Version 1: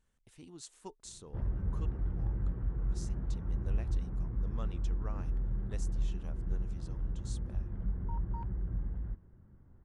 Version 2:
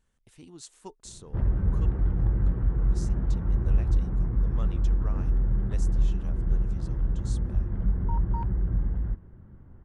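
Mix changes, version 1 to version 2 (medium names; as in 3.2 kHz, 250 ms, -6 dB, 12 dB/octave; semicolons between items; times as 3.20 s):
speech +3.5 dB; background +9.5 dB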